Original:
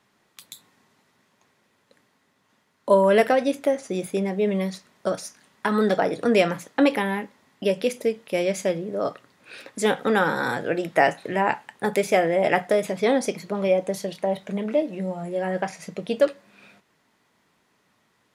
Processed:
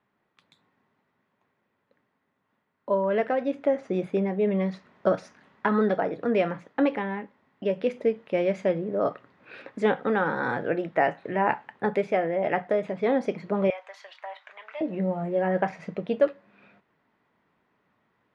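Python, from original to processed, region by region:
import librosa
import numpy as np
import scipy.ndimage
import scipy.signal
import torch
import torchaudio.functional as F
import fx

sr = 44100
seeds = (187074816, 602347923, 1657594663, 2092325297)

y = fx.chain(x, sr, fx.highpass(hz=1000.0, slope=24),
    fx.peak_eq(hz=9600.0, db=-6.5, octaves=0.29), at=(13.7, 14.81))
y = scipy.signal.sosfilt(scipy.signal.butter(2, 2100.0, 'lowpass', fs=sr, output='sos'), y)
y = fx.rider(y, sr, range_db=5, speed_s=0.5)
y = F.gain(torch.from_numpy(y), -2.5).numpy()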